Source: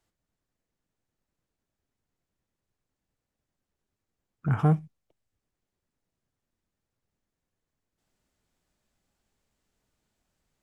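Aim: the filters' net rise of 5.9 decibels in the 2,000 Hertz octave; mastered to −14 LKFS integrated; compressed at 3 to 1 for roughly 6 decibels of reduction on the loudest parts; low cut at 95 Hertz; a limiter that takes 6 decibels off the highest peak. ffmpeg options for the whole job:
ffmpeg -i in.wav -af "highpass=95,equalizer=frequency=2000:width_type=o:gain=9,acompressor=threshold=-24dB:ratio=3,volume=19dB,alimiter=limit=-0.5dB:level=0:latency=1" out.wav

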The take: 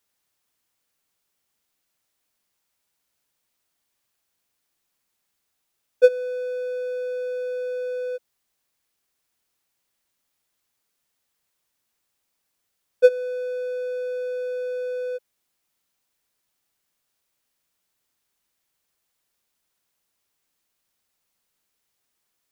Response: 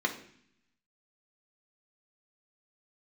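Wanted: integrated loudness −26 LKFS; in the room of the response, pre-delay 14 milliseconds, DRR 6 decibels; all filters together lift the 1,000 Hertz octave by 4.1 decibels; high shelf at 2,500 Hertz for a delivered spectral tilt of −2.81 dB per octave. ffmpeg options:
-filter_complex "[0:a]equalizer=frequency=1000:width_type=o:gain=5.5,highshelf=frequency=2500:gain=7,asplit=2[link_01][link_02];[1:a]atrim=start_sample=2205,adelay=14[link_03];[link_02][link_03]afir=irnorm=-1:irlink=0,volume=-14.5dB[link_04];[link_01][link_04]amix=inputs=2:normalize=0,volume=2dB"

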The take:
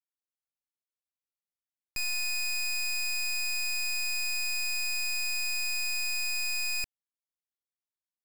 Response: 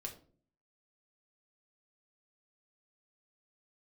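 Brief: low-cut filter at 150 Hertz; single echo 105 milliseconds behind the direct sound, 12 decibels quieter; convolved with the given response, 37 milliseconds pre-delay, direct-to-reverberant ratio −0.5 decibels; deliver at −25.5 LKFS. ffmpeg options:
-filter_complex "[0:a]highpass=150,aecho=1:1:105:0.251,asplit=2[link_01][link_02];[1:a]atrim=start_sample=2205,adelay=37[link_03];[link_02][link_03]afir=irnorm=-1:irlink=0,volume=3dB[link_04];[link_01][link_04]amix=inputs=2:normalize=0,volume=0.5dB"

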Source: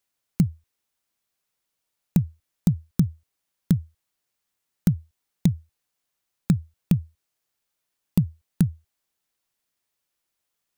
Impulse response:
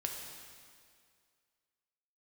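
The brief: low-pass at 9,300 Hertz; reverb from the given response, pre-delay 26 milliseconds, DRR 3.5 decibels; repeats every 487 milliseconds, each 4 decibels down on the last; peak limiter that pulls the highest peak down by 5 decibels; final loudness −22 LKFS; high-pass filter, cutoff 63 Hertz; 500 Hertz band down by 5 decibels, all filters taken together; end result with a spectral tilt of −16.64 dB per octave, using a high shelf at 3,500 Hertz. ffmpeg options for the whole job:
-filter_complex "[0:a]highpass=63,lowpass=9300,equalizer=frequency=500:width_type=o:gain=-7.5,highshelf=frequency=3500:gain=8,alimiter=limit=-14dB:level=0:latency=1,aecho=1:1:487|974|1461|1948|2435|2922|3409|3896|4383:0.631|0.398|0.25|0.158|0.0994|0.0626|0.0394|0.0249|0.0157,asplit=2[link_01][link_02];[1:a]atrim=start_sample=2205,adelay=26[link_03];[link_02][link_03]afir=irnorm=-1:irlink=0,volume=-5dB[link_04];[link_01][link_04]amix=inputs=2:normalize=0,volume=8dB"

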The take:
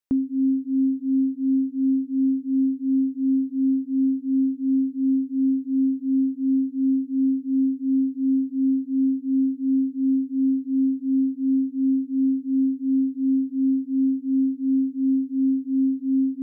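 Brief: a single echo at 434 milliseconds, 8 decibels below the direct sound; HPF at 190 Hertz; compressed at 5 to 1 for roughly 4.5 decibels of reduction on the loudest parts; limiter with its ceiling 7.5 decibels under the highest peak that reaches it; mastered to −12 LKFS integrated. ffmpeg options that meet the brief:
ffmpeg -i in.wav -af "highpass=190,acompressor=threshold=-24dB:ratio=5,alimiter=level_in=1.5dB:limit=-24dB:level=0:latency=1,volume=-1.5dB,aecho=1:1:434:0.398,volume=16.5dB" out.wav

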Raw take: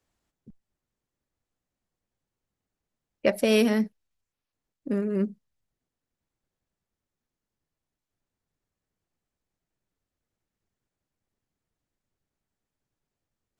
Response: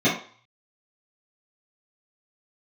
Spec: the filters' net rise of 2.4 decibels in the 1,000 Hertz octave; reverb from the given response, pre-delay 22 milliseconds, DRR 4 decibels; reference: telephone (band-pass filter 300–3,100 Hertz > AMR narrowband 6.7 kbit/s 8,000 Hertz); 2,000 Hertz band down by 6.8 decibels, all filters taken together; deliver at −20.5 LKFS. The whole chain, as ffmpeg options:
-filter_complex "[0:a]equalizer=frequency=1000:width_type=o:gain=5.5,equalizer=frequency=2000:width_type=o:gain=-8.5,asplit=2[link_01][link_02];[1:a]atrim=start_sample=2205,adelay=22[link_03];[link_02][link_03]afir=irnorm=-1:irlink=0,volume=-21.5dB[link_04];[link_01][link_04]amix=inputs=2:normalize=0,highpass=300,lowpass=3100,volume=6dB" -ar 8000 -c:a libopencore_amrnb -b:a 6700

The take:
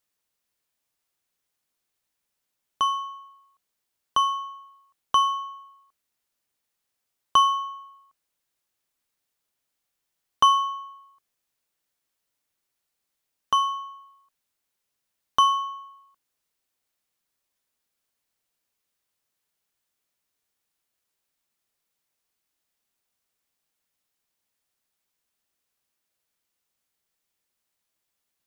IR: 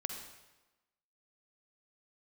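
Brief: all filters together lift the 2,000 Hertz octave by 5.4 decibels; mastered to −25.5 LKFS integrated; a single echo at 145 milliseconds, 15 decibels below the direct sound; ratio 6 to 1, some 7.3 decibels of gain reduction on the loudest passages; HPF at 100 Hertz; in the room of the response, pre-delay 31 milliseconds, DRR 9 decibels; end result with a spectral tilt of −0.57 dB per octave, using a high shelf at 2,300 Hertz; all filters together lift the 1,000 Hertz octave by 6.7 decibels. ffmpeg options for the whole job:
-filter_complex "[0:a]highpass=100,equalizer=frequency=1000:width_type=o:gain=6.5,equalizer=frequency=2000:width_type=o:gain=8.5,highshelf=frequency=2300:gain=-8,acompressor=threshold=-15dB:ratio=6,aecho=1:1:145:0.178,asplit=2[link_01][link_02];[1:a]atrim=start_sample=2205,adelay=31[link_03];[link_02][link_03]afir=irnorm=-1:irlink=0,volume=-9.5dB[link_04];[link_01][link_04]amix=inputs=2:normalize=0,volume=-5dB"

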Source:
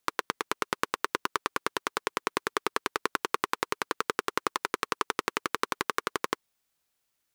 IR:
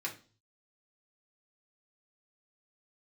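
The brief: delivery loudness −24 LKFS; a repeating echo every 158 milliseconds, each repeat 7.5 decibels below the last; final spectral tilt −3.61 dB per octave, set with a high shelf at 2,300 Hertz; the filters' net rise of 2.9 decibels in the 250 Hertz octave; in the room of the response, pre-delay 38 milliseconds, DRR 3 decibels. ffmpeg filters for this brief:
-filter_complex "[0:a]equalizer=frequency=250:width_type=o:gain=4.5,highshelf=frequency=2300:gain=-8,aecho=1:1:158|316|474|632|790:0.422|0.177|0.0744|0.0312|0.0131,asplit=2[link_01][link_02];[1:a]atrim=start_sample=2205,adelay=38[link_03];[link_02][link_03]afir=irnorm=-1:irlink=0,volume=-5.5dB[link_04];[link_01][link_04]amix=inputs=2:normalize=0,volume=7dB"

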